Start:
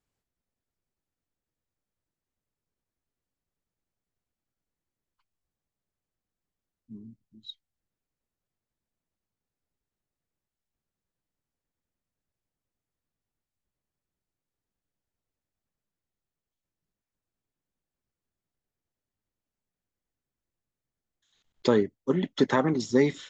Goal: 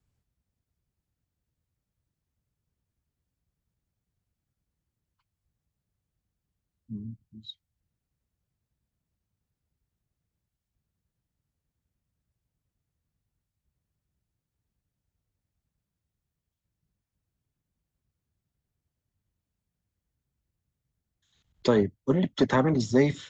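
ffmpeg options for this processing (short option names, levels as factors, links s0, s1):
-filter_complex "[0:a]acrossover=split=160|1100|2200[s0][s1][s2][s3];[s0]aeval=exprs='0.0501*sin(PI/2*3.55*val(0)/0.0501)':c=same[s4];[s4][s1][s2][s3]amix=inputs=4:normalize=0,highpass=42"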